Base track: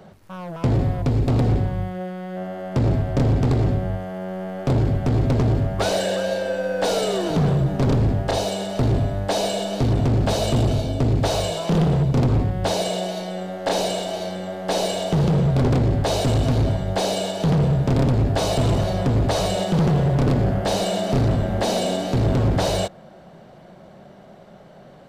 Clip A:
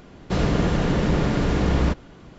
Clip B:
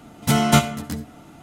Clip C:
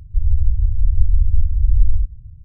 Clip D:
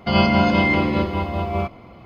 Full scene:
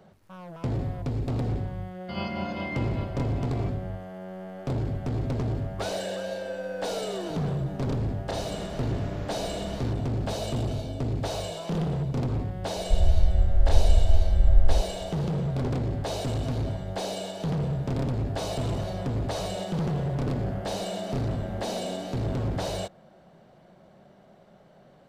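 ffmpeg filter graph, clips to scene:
ffmpeg -i bed.wav -i cue0.wav -i cue1.wav -i cue2.wav -i cue3.wav -filter_complex "[0:a]volume=-9.5dB[link_01];[4:a]atrim=end=2.05,asetpts=PTS-STARTPTS,volume=-16dB,afade=type=in:duration=0.004:curve=hsin,afade=type=out:start_time=2.046:duration=0.004:curve=hsin,adelay=2020[link_02];[1:a]atrim=end=2.38,asetpts=PTS-STARTPTS,volume=-16dB,afade=type=in:duration=0.004:curve=hsin,afade=type=out:start_time=2.376:duration=0.004:curve=hsin,adelay=7990[link_03];[3:a]atrim=end=2.44,asetpts=PTS-STARTPTS,volume=-4.5dB,afade=type=in:duration=0.004:curve=hsin,afade=type=out:start_time=2.436:duration=0.004:curve=hsin,adelay=12760[link_04];[link_01][link_02][link_03][link_04]amix=inputs=4:normalize=0" out.wav

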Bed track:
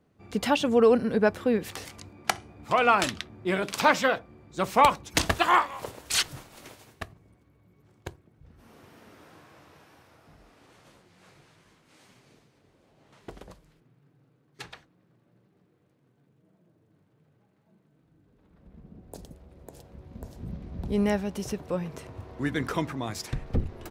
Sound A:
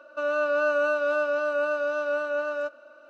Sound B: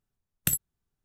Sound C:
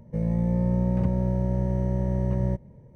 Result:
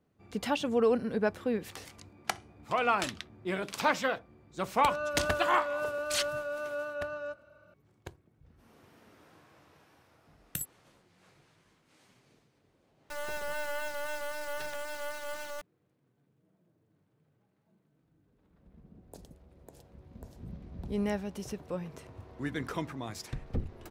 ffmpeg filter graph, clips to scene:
ffmpeg -i bed.wav -i cue0.wav -i cue1.wav -filter_complex "[1:a]asplit=2[link_01][link_02];[0:a]volume=-6.5dB[link_03];[link_02]acrusher=bits=3:dc=4:mix=0:aa=0.000001[link_04];[link_01]atrim=end=3.09,asetpts=PTS-STARTPTS,volume=-9dB,afade=type=in:duration=0.004:curve=hsin,afade=type=out:start_time=3.086:duration=0.004:curve=hsin,adelay=205065S[link_05];[2:a]atrim=end=1.04,asetpts=PTS-STARTPTS,volume=-10.5dB,afade=type=in:duration=0.004:curve=hsin,afade=type=out:start_time=1.036:duration=0.004:curve=hsin,adelay=10080[link_06];[link_04]atrim=end=3.09,asetpts=PTS-STARTPTS,volume=-7.5dB,afade=type=in:duration=0.004:curve=hsin,afade=type=out:start_time=3.086:duration=0.004:curve=hsin,adelay=12930[link_07];[link_03][link_05][link_06][link_07]amix=inputs=4:normalize=0" out.wav

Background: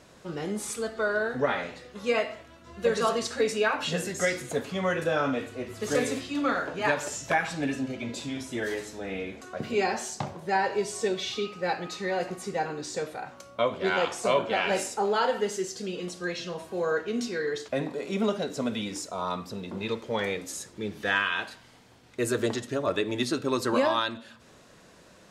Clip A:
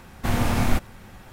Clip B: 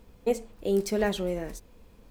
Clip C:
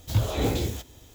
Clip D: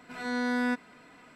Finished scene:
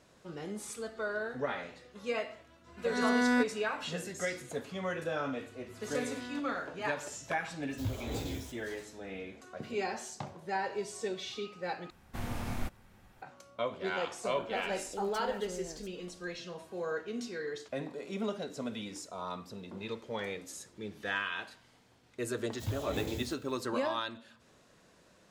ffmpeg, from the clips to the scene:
ffmpeg -i bed.wav -i cue0.wav -i cue1.wav -i cue2.wav -i cue3.wav -filter_complex "[4:a]asplit=2[link_01][link_02];[3:a]asplit=2[link_03][link_04];[0:a]volume=-8.5dB[link_05];[link_01]dynaudnorm=framelen=170:gausssize=3:maxgain=11dB[link_06];[2:a]alimiter=limit=-21.5dB:level=0:latency=1:release=96[link_07];[link_04]highpass=74[link_08];[link_05]asplit=2[link_09][link_10];[link_09]atrim=end=11.904[link_11];[1:a]atrim=end=1.32,asetpts=PTS-STARTPTS,volume=-15dB[link_12];[link_10]atrim=start=13.216[link_13];[link_06]atrim=end=1.35,asetpts=PTS-STARTPTS,volume=-10dB,afade=type=in:duration=0.004:curve=hsin,afade=type=out:start_time=1.346:duration=0.004:curve=hsin,adelay=2680[link_14];[link_02]atrim=end=1.35,asetpts=PTS-STARTPTS,volume=-15.5dB,afade=type=in:duration=0.004:curve=hsin,afade=type=out:start_time=1.346:duration=0.004:curve=hsin,adelay=249165S[link_15];[link_03]atrim=end=1.14,asetpts=PTS-STARTPTS,volume=-12.5dB,afade=type=in:duration=0.004:curve=hsin,afade=type=out:start_time=1.136:duration=0.004:curve=hsin,adelay=339570S[link_16];[link_07]atrim=end=2.1,asetpts=PTS-STARTPTS,volume=-12.5dB,afade=type=in:duration=0.004:curve=hsin,afade=type=out:start_time=2.096:duration=0.004:curve=hsin,adelay=629748S[link_17];[link_08]atrim=end=1.14,asetpts=PTS-STARTPTS,volume=-11.5dB,afade=type=in:duration=0.004:curve=hsin,afade=type=out:start_time=1.136:duration=0.004:curve=hsin,adelay=22520[link_18];[link_11][link_12]acrossfade=duration=0.004:curve1=hsin:curve2=hsin[link_19];[link_19][link_13]acrossfade=duration=0.004:curve1=hsin:curve2=hsin[link_20];[link_20][link_14][link_15][link_16][link_17][link_18]amix=inputs=6:normalize=0" out.wav

